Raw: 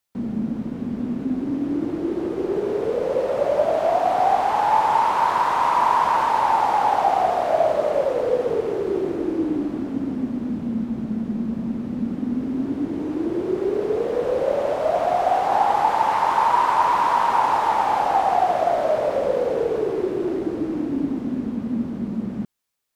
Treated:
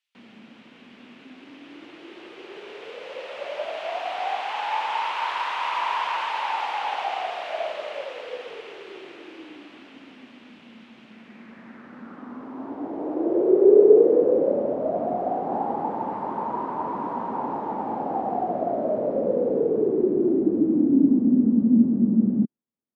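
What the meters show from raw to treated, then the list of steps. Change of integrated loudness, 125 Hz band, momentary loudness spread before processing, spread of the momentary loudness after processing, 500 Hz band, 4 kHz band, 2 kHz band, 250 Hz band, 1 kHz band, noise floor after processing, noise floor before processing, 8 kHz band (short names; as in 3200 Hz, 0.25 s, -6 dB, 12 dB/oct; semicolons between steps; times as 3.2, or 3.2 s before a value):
-1.5 dB, -2.5 dB, 8 LU, 21 LU, -1.0 dB, +0.5 dB, -3.5 dB, +1.0 dB, -9.5 dB, -50 dBFS, -31 dBFS, n/a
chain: band-pass sweep 2800 Hz -> 230 Hz, 11.05–14.68; dynamic EQ 450 Hz, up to +5 dB, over -41 dBFS, Q 0.81; gain +6 dB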